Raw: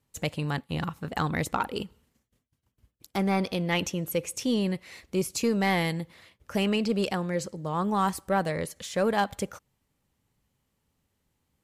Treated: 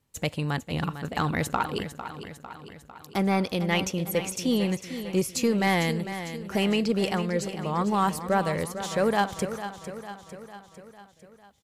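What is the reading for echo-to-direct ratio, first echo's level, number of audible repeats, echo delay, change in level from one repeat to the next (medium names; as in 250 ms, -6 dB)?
-9.5 dB, -11.0 dB, 5, 451 ms, -5.0 dB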